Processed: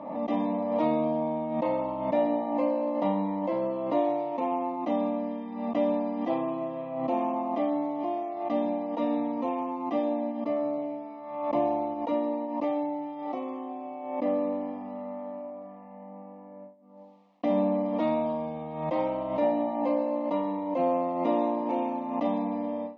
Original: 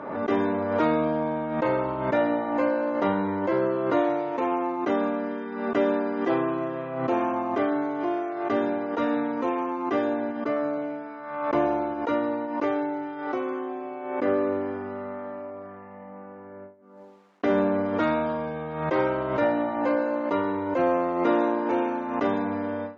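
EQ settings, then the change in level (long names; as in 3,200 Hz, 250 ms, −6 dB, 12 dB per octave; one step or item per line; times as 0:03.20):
high-pass filter 60 Hz
high-frequency loss of the air 150 metres
phaser with its sweep stopped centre 400 Hz, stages 6
0.0 dB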